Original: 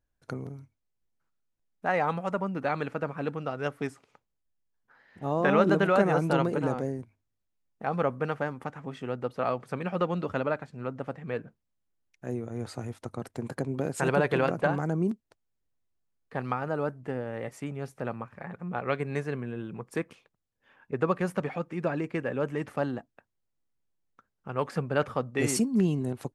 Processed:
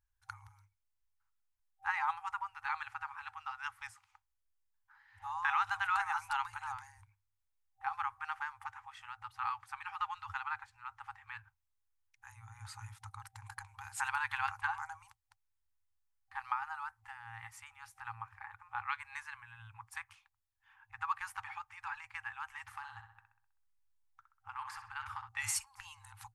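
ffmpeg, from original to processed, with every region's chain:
-filter_complex "[0:a]asettb=1/sr,asplit=3[a][b][c];[a]atrim=end=22.654[d];[b]atrim=start=22.65:end=25.29,asetpts=PTS-STARTPTS,afade=t=in:d=0.004:c=qsin,afade=t=out:st=2.636:d=0.004:c=qsin,acompressor=threshold=-29dB:ratio=3:attack=3.2:release=140:knee=1:detection=peak,asplit=2[e][f];[f]adelay=64,lowpass=f=3.6k:p=1,volume=-7dB,asplit=2[g][h];[h]adelay=64,lowpass=f=3.6k:p=1,volume=0.55,asplit=2[i][j];[j]adelay=64,lowpass=f=3.6k:p=1,volume=0.55,asplit=2[k][l];[l]adelay=64,lowpass=f=3.6k:p=1,volume=0.55,asplit=2[m][n];[n]adelay=64,lowpass=f=3.6k:p=1,volume=0.55,asplit=2[o][p];[p]adelay=64,lowpass=f=3.6k:p=1,volume=0.55,asplit=2[q][r];[r]adelay=64,lowpass=f=3.6k:p=1,volume=0.55[s];[e][g][i][k][m][o][q][s]amix=inputs=8:normalize=0,atrim=end_sample=116424[t];[c]atrim=start=25.286[u];[d][t]acrossfade=d=0.004:c1=hsin:c2=qsin[v];[v][u]acrossfade=d=0.004:c1=qsin:c2=hsin,afftfilt=real='re*(1-between(b*sr/4096,110,780))':imag='im*(1-between(b*sr/4096,110,780))':win_size=4096:overlap=0.75,equalizer=f=3.8k:w=0.9:g=-3,volume=-2.5dB"

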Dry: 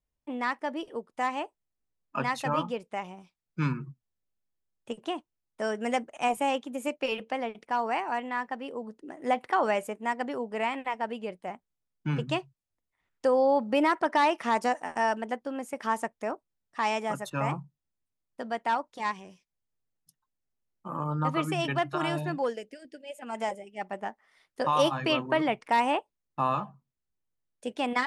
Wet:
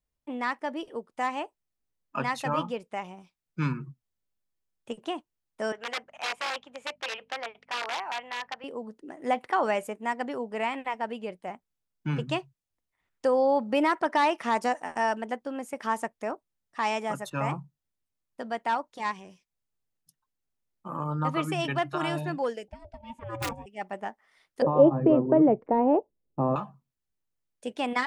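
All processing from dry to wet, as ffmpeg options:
-filter_complex "[0:a]asettb=1/sr,asplit=3[a][b][c];[a]atrim=end=5.724[d];[b]atrim=start=5.72:end=8.64,asetpts=PTS-STARTPTS,afade=t=in:d=0.004:c=qsin,afade=t=out:st=2.916:d=0.004:c=qsin,aeval=exprs='val(0)+0.00891*(sin(2*PI*50*n/s)+sin(2*PI*2*50*n/s)/2+sin(2*PI*3*50*n/s)/3+sin(2*PI*4*50*n/s)/4+sin(2*PI*5*50*n/s)/5)':c=same,aeval=exprs='(mod(13.3*val(0)+1,2)-1)/13.3':c=same,highpass=690,lowpass=3.8k[e];[c]atrim=start=8.636[f];[d][e]acrossfade=d=0.004:c1=hsin:c2=qsin[g];[g][f]acrossfade=d=0.004:c1=qsin:c2=hsin,asettb=1/sr,asplit=3[h][i][j];[h]atrim=end=22.684[k];[i]atrim=start=22.68:end=23.66,asetpts=PTS-STARTPTS,afade=t=in:d=0.004:c=qsin,afade=t=out:st=0.976:d=0.004:c=qsin,aemphasis=mode=reproduction:type=riaa,aeval=exprs='(mod(12.6*val(0)+1,2)-1)/12.6':c=same,aeval=exprs='val(0)*sin(2*PI*340*n/s)':c=same[l];[j]atrim=start=23.656[m];[k][l]acrossfade=d=0.004:c1=hsin:c2=qsin[n];[n][m]acrossfade=d=0.004:c1=qsin:c2=hsin,asettb=1/sr,asplit=3[o][p][q];[o]atrim=end=24.624[r];[p]atrim=start=24.62:end=26.56,asetpts=PTS-STARTPTS,afade=t=in:d=0.004:c=qsin,afade=t=out:st=1.936:d=0.004:c=qsin,acontrast=73,lowpass=f=460:t=q:w=1.6[s];[q]atrim=start=26.556[t];[r][s]acrossfade=d=0.004:c1=hsin:c2=qsin[u];[u][t]acrossfade=d=0.004:c1=qsin:c2=hsin"

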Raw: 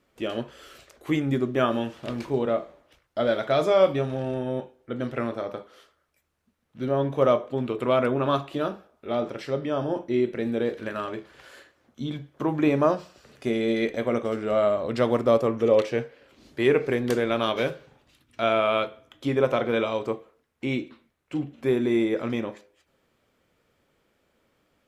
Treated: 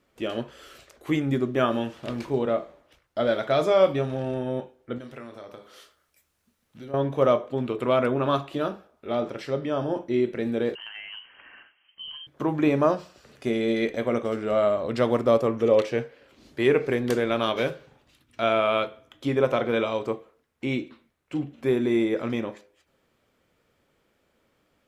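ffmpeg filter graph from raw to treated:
-filter_complex "[0:a]asettb=1/sr,asplit=3[a][b][c];[a]atrim=end=4.984[d];[b]atrim=start=4.98:end=6.94,asetpts=PTS-STARTPTS,afade=t=in:d=0.004:c=qsin,afade=t=out:st=1.956:d=0.004:c=qsin,highshelf=f=3k:g=9.5,acompressor=threshold=-43dB:ratio=2.5:attack=3.2:release=140:knee=1:detection=peak,asplit=2[e][f];[f]adelay=29,volume=-10.5dB[g];[e][g]amix=inputs=2:normalize=0,atrim=end_sample=86436[h];[c]atrim=start=6.936[i];[d][h]acrossfade=d=0.004:c1=hsin:c2=qsin[j];[j][i]acrossfade=d=0.004:c1=qsin:c2=hsin,asettb=1/sr,asplit=3[k][l][m];[k]atrim=end=10.754[n];[l]atrim=start=10.75:end=12.27,asetpts=PTS-STARTPTS,afade=t=in:d=0.004:c=qsin,afade=t=out:st=1.516:d=0.004:c=qsin,highpass=87,lowpass=f=2.8k:t=q:w=0.5098,lowpass=f=2.8k:t=q:w=0.6013,lowpass=f=2.8k:t=q:w=0.9,lowpass=f=2.8k:t=q:w=2.563,afreqshift=-3300,acompressor=threshold=-37dB:ratio=4:attack=3.2:release=140:knee=1:detection=peak[o];[m]atrim=start=12.266[p];[n][o]acrossfade=d=0.004:c1=hsin:c2=qsin[q];[q][p]acrossfade=d=0.004:c1=qsin:c2=hsin"

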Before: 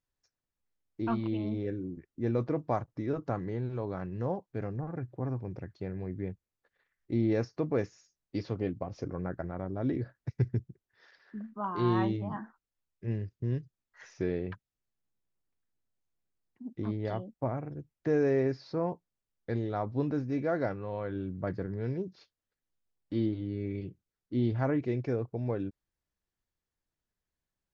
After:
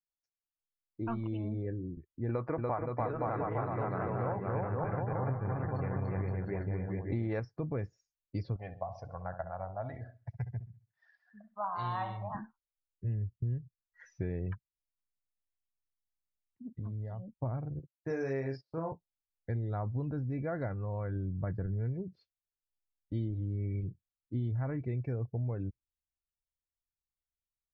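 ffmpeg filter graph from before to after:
-filter_complex "[0:a]asettb=1/sr,asplit=3[a][b][c];[a]atrim=end=2.294[d];[b]atrim=start=2.29:end=7.4,asetpts=PTS-STARTPTS,afade=t=in:d=0.004:c=qsin,afade=t=out:st=5.106:d=0.004:c=qsin,equalizer=f=1.1k:w=0.39:g=14.5,aecho=1:1:290|522|707.6|856.1|974.9:0.794|0.631|0.501|0.398|0.316,atrim=end_sample=225351[e];[c]atrim=start=7.396[f];[d][e]acrossfade=d=0.004:c1=hsin:c2=qsin[g];[g][f]acrossfade=d=0.004:c1=qsin:c2=hsin,asettb=1/sr,asplit=3[h][i][j];[h]atrim=end=8.564[k];[i]atrim=start=8.56:end=12.35,asetpts=PTS-STARTPTS,afade=t=in:d=0.004:c=qsin,afade=t=out:st=3.786:d=0.004:c=qsin,lowshelf=f=490:t=q:w=3:g=-11.5,aecho=1:1:66|132|198|264|330:0.299|0.149|0.0746|0.0373|0.0187,atrim=end_sample=167139[l];[j]atrim=start=12.346[m];[k][l]acrossfade=d=0.004:c1=hsin:c2=qsin[n];[n][m]acrossfade=d=0.004:c1=qsin:c2=hsin,asettb=1/sr,asplit=3[o][p][q];[o]atrim=end=16.754[r];[p]atrim=start=16.75:end=17.28,asetpts=PTS-STARTPTS,afade=t=in:d=0.004:c=qsin,afade=t=out:st=0.526:d=0.004:c=qsin,equalizer=f=350:t=o:w=0.22:g=-13,acompressor=threshold=-38dB:ratio=6:attack=3.2:release=140:knee=1:detection=peak[s];[q]atrim=start=17.276[t];[r][s]acrossfade=d=0.004:c1=hsin:c2=qsin[u];[u][t]acrossfade=d=0.004:c1=qsin:c2=hsin,asettb=1/sr,asplit=3[v][w][x];[v]atrim=end=17.794[y];[w]atrim=start=17.79:end=18.92,asetpts=PTS-STARTPTS,afade=t=in:d=0.004:c=qsin,afade=t=out:st=1.126:d=0.004:c=qsin,agate=range=-23dB:threshold=-44dB:ratio=16:release=100:detection=peak,aemphasis=mode=production:type=bsi,asplit=2[z][aa];[aa]adelay=37,volume=-4dB[ab];[z][ab]amix=inputs=2:normalize=0,atrim=end_sample=49833[ac];[x]atrim=start=18.916[ad];[y][ac]acrossfade=d=0.004:c1=hsin:c2=qsin[ae];[ae][ad]acrossfade=d=0.004:c1=qsin:c2=hsin,afftdn=nr=19:nf=-50,asubboost=boost=4.5:cutoff=130,acompressor=threshold=-29dB:ratio=6,volume=-2dB"

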